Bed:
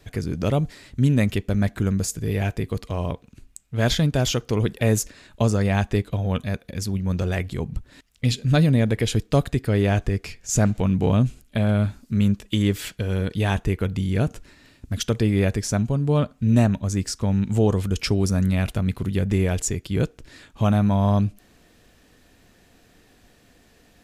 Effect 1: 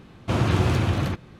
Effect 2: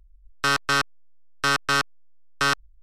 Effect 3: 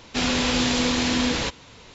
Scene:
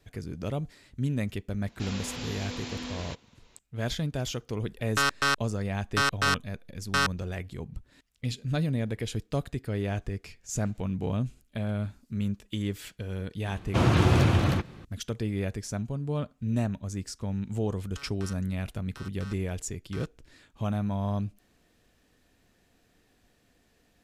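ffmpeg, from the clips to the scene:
-filter_complex "[2:a]asplit=2[s0][s1];[0:a]volume=0.299[s2];[s1]acompressor=threshold=0.0251:ratio=6:attack=3.2:release=140:knee=1:detection=peak[s3];[3:a]atrim=end=1.94,asetpts=PTS-STARTPTS,volume=0.168,afade=t=in:d=0.004:c=hsin,afade=t=out:st=1.936:d=0.004:c=hsin,adelay=1650[s4];[s0]atrim=end=2.82,asetpts=PTS-STARTPTS,volume=0.668,afade=t=in:d=0.004:c=hsin,afade=t=out:st=2.816:d=0.004:c=hsin,adelay=199773S[s5];[1:a]atrim=end=1.39,asetpts=PTS-STARTPTS,afade=t=in:d=0.004:c=hsin,afade=t=out:st=1.386:d=0.004:c=hsin,adelay=13460[s6];[s3]atrim=end=2.82,asetpts=PTS-STARTPTS,volume=0.211,afade=t=in:d=0.004:c=hsin,afade=t=out:st=2.816:d=0.004:c=hsin,adelay=17520[s7];[s2][s4][s5][s6][s7]amix=inputs=5:normalize=0"

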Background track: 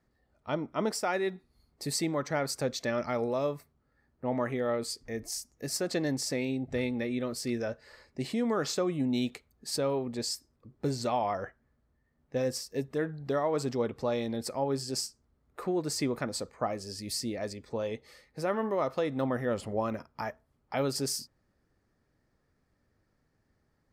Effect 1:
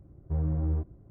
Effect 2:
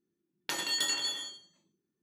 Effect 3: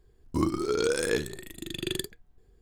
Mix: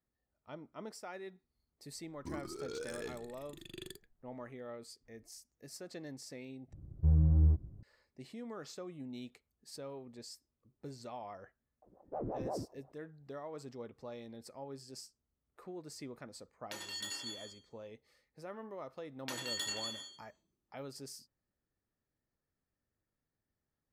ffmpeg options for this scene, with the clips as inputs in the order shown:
-filter_complex "[1:a]asplit=2[s0][s1];[2:a]asplit=2[s2][s3];[0:a]volume=0.158[s4];[3:a]asoftclip=type=tanh:threshold=0.15[s5];[s0]bass=f=250:g=11,treble=f=4000:g=5[s6];[s1]aeval=exprs='val(0)*sin(2*PI*440*n/s+440*0.6/5.7*sin(2*PI*5.7*n/s))':c=same[s7];[s4]asplit=2[s8][s9];[s8]atrim=end=6.734[s10];[s6]atrim=end=1.1,asetpts=PTS-STARTPTS,volume=0.376[s11];[s9]atrim=start=7.826[s12];[s5]atrim=end=2.61,asetpts=PTS-STARTPTS,volume=0.168,afade=t=in:d=0.004:c=hsin,afade=t=out:st=2.606:d=0.004:c=hsin,adelay=1910[s13];[s7]atrim=end=1.1,asetpts=PTS-STARTPTS,volume=0.355,afade=t=in:d=0.004:c=hsin,afade=t=out:st=1.096:d=0.004:c=hsin,adelay=11820[s14];[s2]atrim=end=2.02,asetpts=PTS-STARTPTS,volume=0.266,afade=t=in:d=0.004:c=hsin,afade=t=out:st=2.016:d=0.004:c=hsin,adelay=16220[s15];[s3]atrim=end=2.02,asetpts=PTS-STARTPTS,volume=0.398,afade=t=in:d=0.004:c=hsin,afade=t=out:st=2.016:d=0.004:c=hsin,adelay=18790[s16];[s10][s11]acrossfade=d=0.004:c1=hsin:c2=hsin[s17];[s17][s12]acrossfade=d=0.004:c1=hsin:c2=hsin[s18];[s18][s13][s14][s15][s16]amix=inputs=5:normalize=0"

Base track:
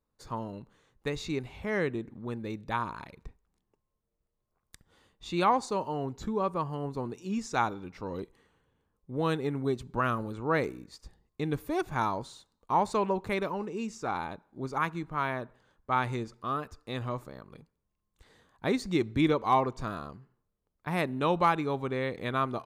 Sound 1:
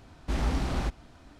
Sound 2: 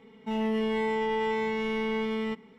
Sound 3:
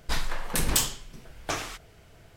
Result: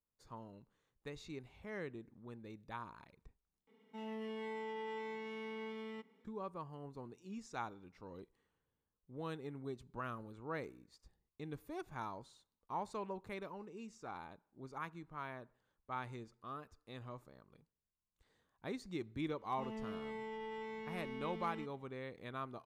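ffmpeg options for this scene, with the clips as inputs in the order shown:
-filter_complex "[2:a]asplit=2[s0][s1];[0:a]volume=0.178[s2];[s0]highpass=200[s3];[s2]asplit=2[s4][s5];[s4]atrim=end=3.674[s6];[s3]atrim=end=2.58,asetpts=PTS-STARTPTS,volume=0.178[s7];[s5]atrim=start=6.246[s8];[s1]atrim=end=2.58,asetpts=PTS-STARTPTS,volume=0.141,afade=t=in:d=0.004:c=hsin,afade=t=out:st=2.576:d=0.004:c=hsin,adelay=19310[s9];[s6][s7]acrossfade=d=0.004:c1=hsin:c2=hsin[s10];[s10][s8]acrossfade=d=0.004:c1=hsin:c2=hsin[s11];[s11][s9]amix=inputs=2:normalize=0"

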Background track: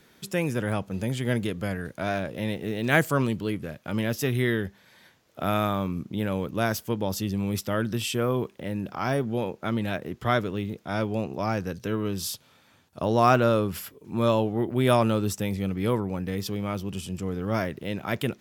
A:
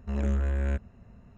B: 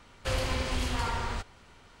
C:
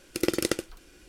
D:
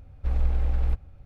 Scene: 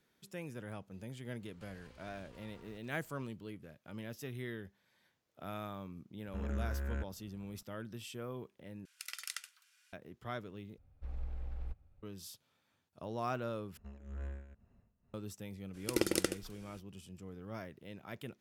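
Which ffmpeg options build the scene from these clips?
-filter_complex "[1:a]asplit=2[s0][s1];[3:a]asplit=2[s2][s3];[0:a]volume=0.126[s4];[2:a]acompressor=threshold=0.00794:ratio=6:attack=3.2:release=140:knee=1:detection=peak[s5];[s0]equalizer=f=1400:t=o:w=0.43:g=7.5[s6];[s2]highpass=f=1300:w=0.5412,highpass=f=1300:w=1.3066[s7];[s1]tremolo=f=2.1:d=0.84[s8];[s3]equalizer=f=10000:t=o:w=0.77:g=2.5[s9];[s4]asplit=4[s10][s11][s12][s13];[s10]atrim=end=8.854[s14];[s7]atrim=end=1.08,asetpts=PTS-STARTPTS,volume=0.282[s15];[s11]atrim=start=9.926:end=10.784[s16];[4:a]atrim=end=1.25,asetpts=PTS-STARTPTS,volume=0.133[s17];[s12]atrim=start=12.026:end=13.774[s18];[s8]atrim=end=1.37,asetpts=PTS-STARTPTS,volume=0.211[s19];[s13]atrim=start=15.136[s20];[s5]atrim=end=2,asetpts=PTS-STARTPTS,volume=0.168,afade=t=in:d=0.1,afade=t=out:st=1.9:d=0.1,adelay=1360[s21];[s6]atrim=end=1.37,asetpts=PTS-STARTPTS,volume=0.299,afade=t=in:d=0.004:c=hsin,afade=t=out:st=1.366:d=0.004:c=hsin,adelay=276066S[s22];[s9]atrim=end=1.08,asetpts=PTS-STARTPTS,volume=0.501,afade=t=in:d=0.02,afade=t=out:st=1.06:d=0.02,adelay=15730[s23];[s14][s15]acrossfade=d=0.004:c1=hsin:c2=hsin[s24];[s24][s16]acrossfade=d=0.004:c1=hsin:c2=hsin[s25];[s25][s17]acrossfade=d=0.004:c1=hsin:c2=hsin[s26];[s26][s18]acrossfade=d=0.004:c1=hsin:c2=hsin[s27];[s27][s19]acrossfade=d=0.004:c1=hsin:c2=hsin[s28];[s28][s20]acrossfade=d=0.004:c1=hsin:c2=hsin[s29];[s29][s21][s22][s23]amix=inputs=4:normalize=0"

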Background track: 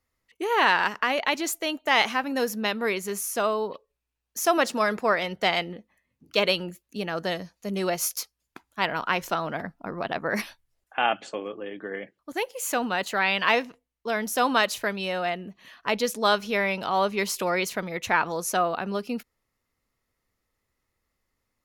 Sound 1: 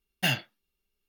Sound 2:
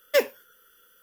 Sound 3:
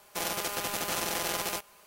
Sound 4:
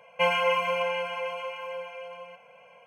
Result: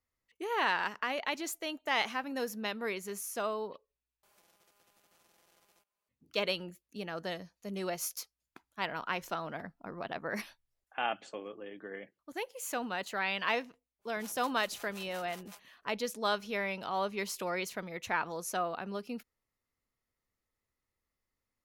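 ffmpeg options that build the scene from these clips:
-filter_complex "[3:a]asplit=2[s0][s1];[0:a]volume=0.335[s2];[s0]acompressor=threshold=0.00447:ratio=6:attack=0.36:release=707:knee=1:detection=rms[s3];[s1]acrossover=split=560[s4][s5];[s4]aeval=exprs='val(0)*(1-1/2+1/2*cos(2*PI*5.5*n/s))':c=same[s6];[s5]aeval=exprs='val(0)*(1-1/2-1/2*cos(2*PI*5.5*n/s))':c=same[s7];[s6][s7]amix=inputs=2:normalize=0[s8];[s2]asplit=2[s9][s10];[s9]atrim=end=4.234[s11];[s3]atrim=end=1.86,asetpts=PTS-STARTPTS,volume=0.266[s12];[s10]atrim=start=6.086[s13];[s8]atrim=end=1.86,asetpts=PTS-STARTPTS,volume=0.15,afade=t=in:d=0.004:c=hsin,afade=t=out:st=1.856:d=0.004:c=hsin,adelay=13990[s14];[s11][s12]acrossfade=d=0.004:c1=hsin:c2=hsin[s15];[s15][s13]acrossfade=d=0.004:c1=hsin:c2=hsin[s16];[s16][s14]amix=inputs=2:normalize=0"

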